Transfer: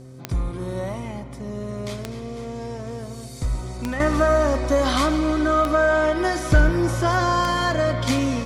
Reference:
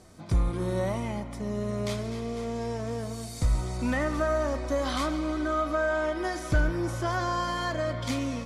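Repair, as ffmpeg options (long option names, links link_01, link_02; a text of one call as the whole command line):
ffmpeg -i in.wav -af "adeclick=threshold=4,bandreject=frequency=129.5:width_type=h:width=4,bandreject=frequency=259:width_type=h:width=4,bandreject=frequency=388.5:width_type=h:width=4,bandreject=frequency=518:width_type=h:width=4,asetnsamples=nb_out_samples=441:pad=0,asendcmd='4 volume volume -8.5dB',volume=0dB" out.wav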